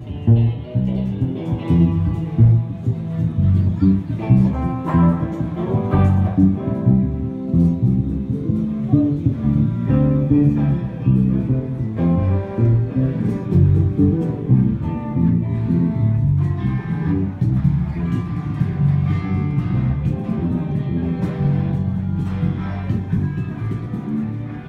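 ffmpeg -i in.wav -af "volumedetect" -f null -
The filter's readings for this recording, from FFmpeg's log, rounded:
mean_volume: -17.7 dB
max_volume: -3.4 dB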